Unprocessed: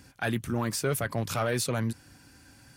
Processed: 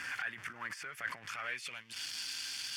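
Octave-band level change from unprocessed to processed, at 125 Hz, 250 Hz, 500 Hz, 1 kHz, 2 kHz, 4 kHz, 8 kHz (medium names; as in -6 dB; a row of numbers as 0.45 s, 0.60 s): -29.5 dB, -27.0 dB, -24.0 dB, -9.5 dB, -2.0 dB, -0.5 dB, -9.0 dB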